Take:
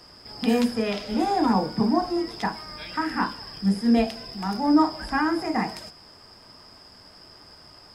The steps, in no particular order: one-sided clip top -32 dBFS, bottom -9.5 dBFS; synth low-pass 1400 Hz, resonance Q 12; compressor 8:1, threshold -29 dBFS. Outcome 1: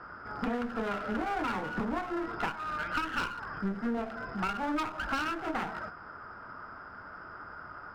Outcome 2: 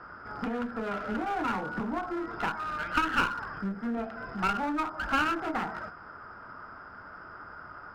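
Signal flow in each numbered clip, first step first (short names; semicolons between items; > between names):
synth low-pass > one-sided clip > compressor; compressor > synth low-pass > one-sided clip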